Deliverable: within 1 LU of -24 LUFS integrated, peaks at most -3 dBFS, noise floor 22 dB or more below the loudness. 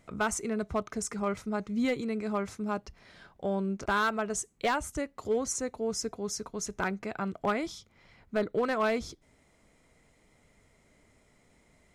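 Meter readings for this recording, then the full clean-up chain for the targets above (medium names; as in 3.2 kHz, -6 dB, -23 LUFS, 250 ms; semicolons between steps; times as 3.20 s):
clipped samples 0.6%; clipping level -21.5 dBFS; loudness -32.0 LUFS; peak level -21.5 dBFS; loudness target -24.0 LUFS
-> clip repair -21.5 dBFS; trim +8 dB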